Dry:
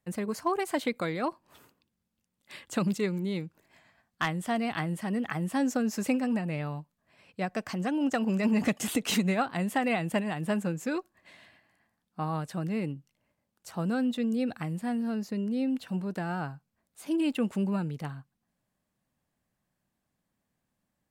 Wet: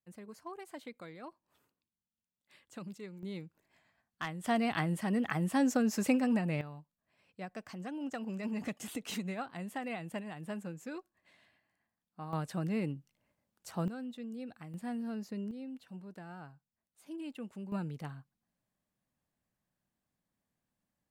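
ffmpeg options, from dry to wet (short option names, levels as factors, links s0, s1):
-af "asetnsamples=n=441:p=0,asendcmd='3.23 volume volume -9.5dB;4.44 volume volume -1dB;6.61 volume volume -11.5dB;12.33 volume volume -2.5dB;13.88 volume volume -14dB;14.74 volume volume -7.5dB;15.51 volume volume -15dB;17.72 volume volume -6dB',volume=0.141"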